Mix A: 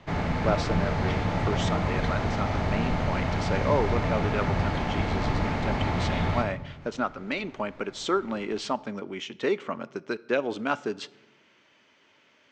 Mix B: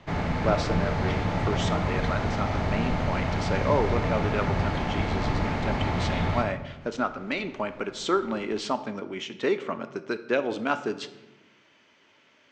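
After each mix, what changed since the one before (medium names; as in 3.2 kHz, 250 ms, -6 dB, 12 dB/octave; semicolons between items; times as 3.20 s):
speech: send +9.0 dB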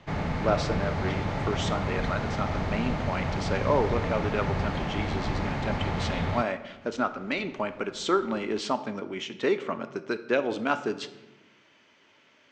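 background: send off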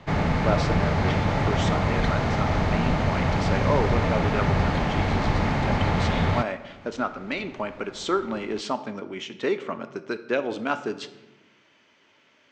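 background +6.5 dB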